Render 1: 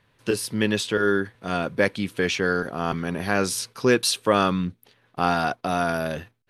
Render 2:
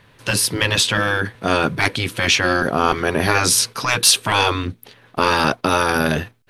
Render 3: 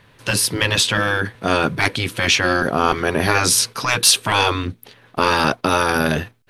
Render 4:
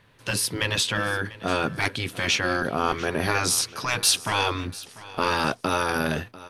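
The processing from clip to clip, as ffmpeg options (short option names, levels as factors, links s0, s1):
-af "acontrast=82,afftfilt=real='re*lt(hypot(re,im),0.501)':imag='im*lt(hypot(re,im),0.501)':win_size=1024:overlap=0.75,volume=1.88"
-af anull
-af "aecho=1:1:694|1388|2082:0.119|0.038|0.0122,volume=0.447"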